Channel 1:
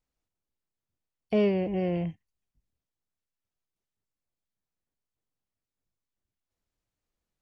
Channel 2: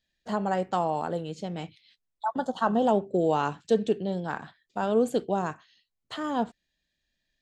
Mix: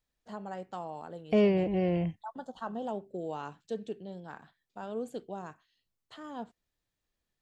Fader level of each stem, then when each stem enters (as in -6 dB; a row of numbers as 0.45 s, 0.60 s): 0.0 dB, -13.0 dB; 0.00 s, 0.00 s